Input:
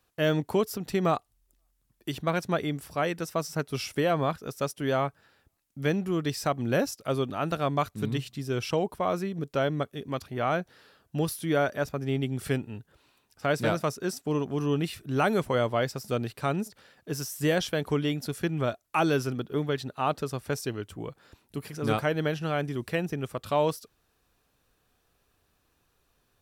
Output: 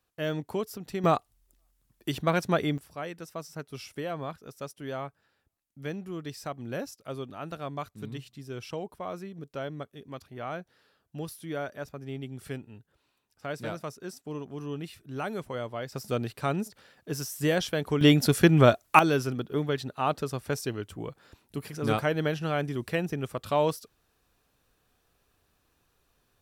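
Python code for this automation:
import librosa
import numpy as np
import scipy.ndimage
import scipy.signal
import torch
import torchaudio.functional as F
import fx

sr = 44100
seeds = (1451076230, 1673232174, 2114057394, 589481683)

y = fx.gain(x, sr, db=fx.steps((0.0, -6.0), (1.04, 2.0), (2.78, -9.0), (15.92, -0.5), (18.01, 10.0), (18.99, 0.0)))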